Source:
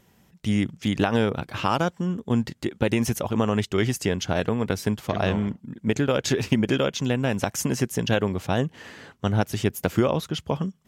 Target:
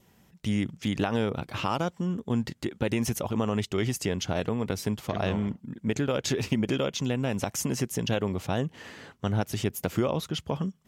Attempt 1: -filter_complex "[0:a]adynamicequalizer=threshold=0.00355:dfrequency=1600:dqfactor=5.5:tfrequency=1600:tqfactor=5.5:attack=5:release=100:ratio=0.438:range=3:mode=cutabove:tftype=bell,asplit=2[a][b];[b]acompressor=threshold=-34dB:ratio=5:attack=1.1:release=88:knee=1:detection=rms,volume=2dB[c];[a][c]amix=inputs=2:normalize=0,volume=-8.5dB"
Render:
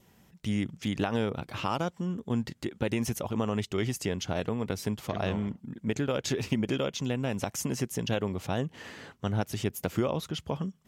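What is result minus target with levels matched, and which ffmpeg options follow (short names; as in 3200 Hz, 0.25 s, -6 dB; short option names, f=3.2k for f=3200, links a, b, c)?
compressor: peak gain reduction +8.5 dB
-filter_complex "[0:a]adynamicequalizer=threshold=0.00355:dfrequency=1600:dqfactor=5.5:tfrequency=1600:tqfactor=5.5:attack=5:release=100:ratio=0.438:range=3:mode=cutabove:tftype=bell,asplit=2[a][b];[b]acompressor=threshold=-23.5dB:ratio=5:attack=1.1:release=88:knee=1:detection=rms,volume=2dB[c];[a][c]amix=inputs=2:normalize=0,volume=-8.5dB"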